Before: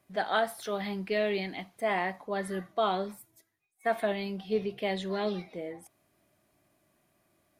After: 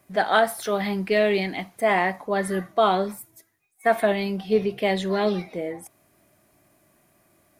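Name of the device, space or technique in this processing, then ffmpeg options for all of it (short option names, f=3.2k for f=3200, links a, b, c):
exciter from parts: -filter_complex "[0:a]asplit=2[a][b];[b]highpass=f=2.5k:w=0.5412,highpass=f=2.5k:w=1.3066,asoftclip=type=tanh:threshold=-37dB,highpass=f=4k:p=1,volume=-7dB[c];[a][c]amix=inputs=2:normalize=0,volume=8.5dB"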